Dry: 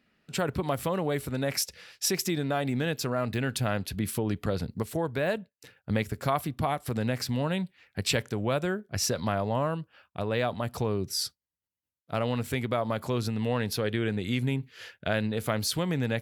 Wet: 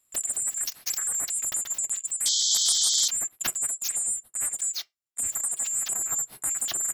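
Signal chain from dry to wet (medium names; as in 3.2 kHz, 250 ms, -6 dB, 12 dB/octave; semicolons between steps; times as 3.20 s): four frequency bands reordered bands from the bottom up 3412; on a send at -14 dB: reverberation RT60 0.40 s, pre-delay 3 ms; on the sum: painted sound noise, 5.28–7.21 s, 1.3–3.4 kHz -24 dBFS; speed mistake 33 rpm record played at 78 rpm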